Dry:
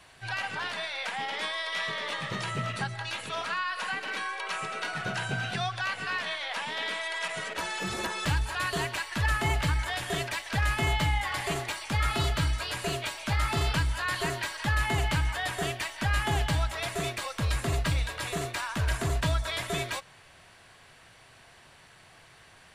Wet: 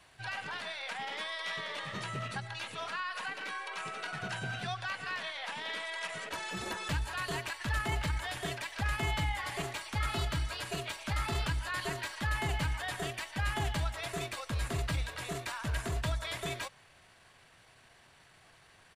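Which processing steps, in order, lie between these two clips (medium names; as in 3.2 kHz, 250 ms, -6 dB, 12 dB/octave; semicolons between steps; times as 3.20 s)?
tempo 1.2×; trim -5.5 dB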